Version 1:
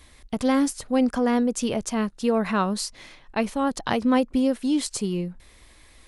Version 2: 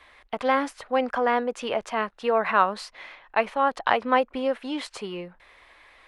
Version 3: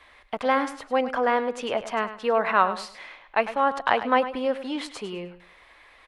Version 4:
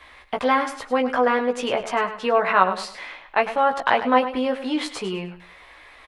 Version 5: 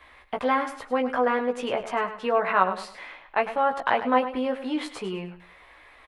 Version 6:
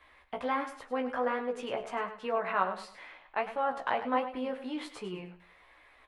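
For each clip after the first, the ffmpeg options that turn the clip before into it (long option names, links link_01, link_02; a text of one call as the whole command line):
ffmpeg -i in.wav -filter_complex "[0:a]acrossover=split=520 3000:gain=0.0891 1 0.0708[link_01][link_02][link_03];[link_01][link_02][link_03]amix=inputs=3:normalize=0,volume=6.5dB" out.wav
ffmpeg -i in.wav -af "aecho=1:1:102|204|306:0.237|0.0593|0.0148" out.wav
ffmpeg -i in.wav -filter_complex "[0:a]asplit=2[link_01][link_02];[link_02]acompressor=threshold=-28dB:ratio=6,volume=-3dB[link_03];[link_01][link_03]amix=inputs=2:normalize=0,asplit=2[link_04][link_05];[link_05]adelay=16,volume=-4dB[link_06];[link_04][link_06]amix=inputs=2:normalize=0" out.wav
ffmpeg -i in.wav -af "equalizer=frequency=5600:width=0.73:gain=-6,volume=-3.5dB" out.wav
ffmpeg -i in.wav -af "flanger=delay=9.1:depth=7.2:regen=69:speed=1.4:shape=sinusoidal,volume=-3.5dB" out.wav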